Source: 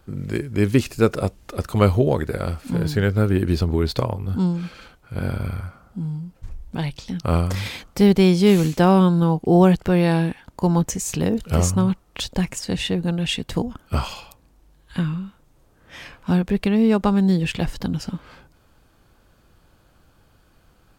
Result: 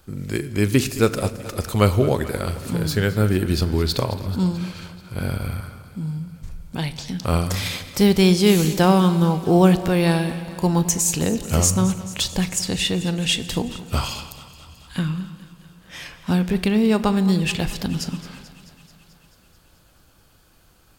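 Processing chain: treble shelf 3.2 kHz +10 dB; thinning echo 218 ms, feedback 70%, high-pass 320 Hz, level -16 dB; on a send at -13.5 dB: reverberation RT60 1.8 s, pre-delay 38 ms; on the sum: trim -1 dB

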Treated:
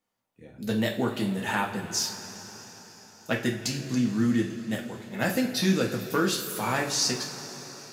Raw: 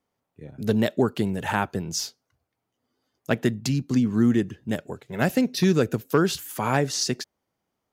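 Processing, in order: tilt shelf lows -3.5 dB; two-slope reverb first 0.34 s, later 4.9 s, from -18 dB, DRR -1 dB; trim -5.5 dB

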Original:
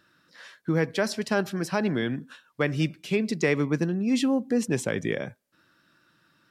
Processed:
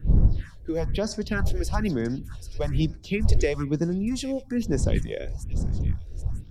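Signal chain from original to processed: wind noise 83 Hz -26 dBFS; feedback echo behind a high-pass 783 ms, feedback 32%, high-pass 4 kHz, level -8.5 dB; phase shifter stages 4, 1.1 Hz, lowest notch 170–3000 Hz

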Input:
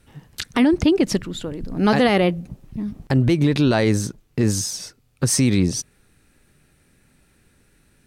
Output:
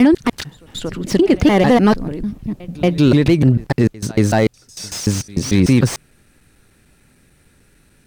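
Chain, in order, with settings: slices played last to first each 149 ms, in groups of 5; pre-echo 231 ms -22 dB; slew-rate limiter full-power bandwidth 190 Hz; trim +5 dB

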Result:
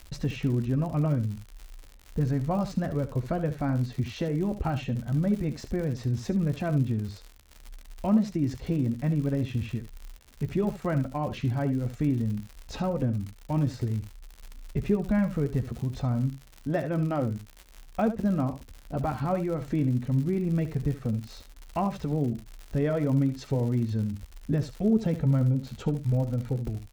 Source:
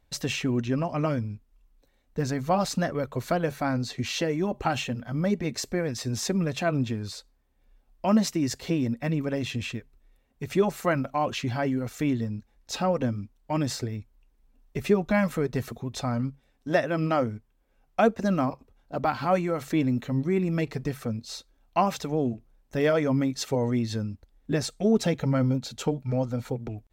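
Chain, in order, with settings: RIAA curve playback; compression 1.5:1, threshold -35 dBFS, peak gain reduction 9 dB; crackle 98 per s -34 dBFS; on a send: early reflections 14 ms -12 dB, 72 ms -12.5 dB; on the sum: trim -1 dB

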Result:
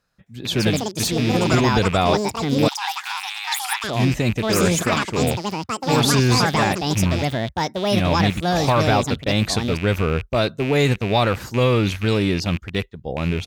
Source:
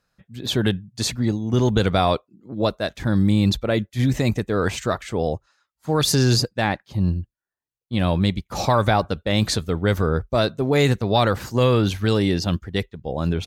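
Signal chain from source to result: rattle on loud lows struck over -26 dBFS, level -19 dBFS; ever faster or slower copies 264 ms, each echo +6 st, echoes 2; 2.68–3.84 s: brick-wall FIR high-pass 740 Hz

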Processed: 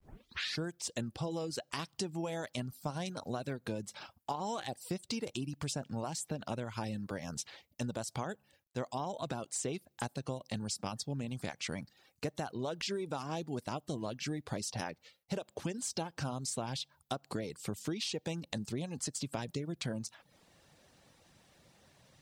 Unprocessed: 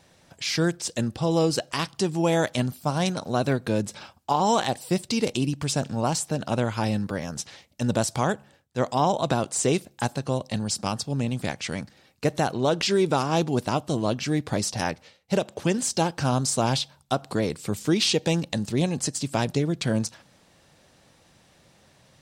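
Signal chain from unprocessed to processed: tape start-up on the opening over 0.61 s; compression 6:1, threshold -29 dBFS, peak gain reduction 12 dB; bit crusher 12-bit; reverb removal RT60 0.51 s; trim -5 dB

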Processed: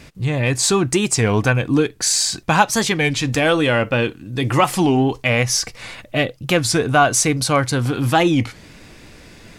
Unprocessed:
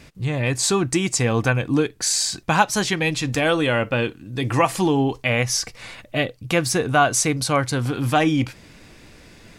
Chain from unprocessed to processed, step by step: in parallel at -10 dB: saturation -17 dBFS, distortion -11 dB; on the sum: warped record 33 1/3 rpm, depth 160 cents; trim +1.5 dB

